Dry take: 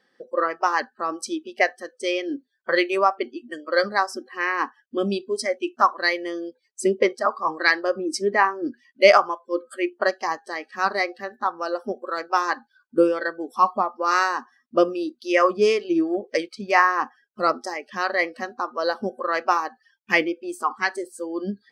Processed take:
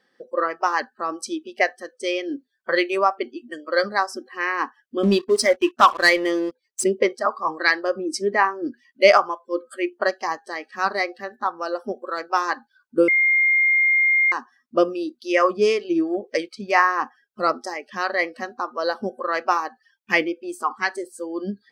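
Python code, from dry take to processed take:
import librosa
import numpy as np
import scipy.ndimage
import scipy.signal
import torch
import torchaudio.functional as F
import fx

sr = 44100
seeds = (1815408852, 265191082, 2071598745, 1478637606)

y = fx.leveller(x, sr, passes=2, at=(5.03, 6.84))
y = fx.edit(y, sr, fx.bleep(start_s=13.08, length_s=1.24, hz=2120.0, db=-14.5), tone=tone)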